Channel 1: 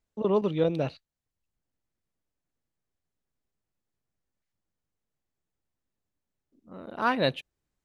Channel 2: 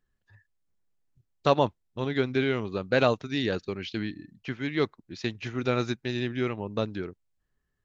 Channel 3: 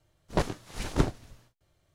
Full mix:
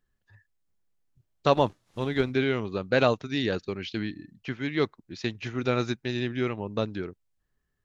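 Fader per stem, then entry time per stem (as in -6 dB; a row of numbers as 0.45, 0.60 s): off, +0.5 dB, -19.0 dB; off, 0.00 s, 1.20 s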